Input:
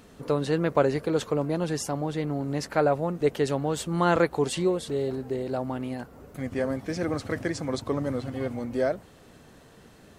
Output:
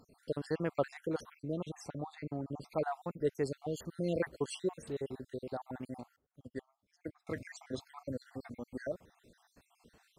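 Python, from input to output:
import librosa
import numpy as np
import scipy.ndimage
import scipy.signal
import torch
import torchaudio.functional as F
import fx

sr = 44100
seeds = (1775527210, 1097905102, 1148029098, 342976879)

y = fx.spec_dropout(x, sr, seeds[0], share_pct=58)
y = fx.high_shelf(y, sr, hz=fx.line((1.41, 7800.0), (2.65, 4200.0)), db=-11.5, at=(1.41, 2.65), fade=0.02)
y = fx.upward_expand(y, sr, threshold_db=-45.0, expansion=2.5, at=(6.16, 7.27))
y = F.gain(torch.from_numpy(y), -8.5).numpy()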